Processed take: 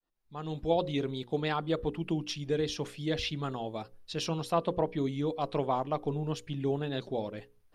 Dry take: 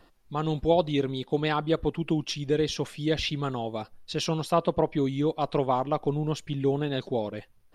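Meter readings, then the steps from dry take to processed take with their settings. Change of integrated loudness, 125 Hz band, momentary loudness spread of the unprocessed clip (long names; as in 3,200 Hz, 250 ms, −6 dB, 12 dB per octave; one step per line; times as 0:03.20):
−5.0 dB, −5.0 dB, 7 LU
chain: fade in at the beginning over 0.78 s
mains-hum notches 60/120/180/240/300/360/420/480/540 Hz
level −4.5 dB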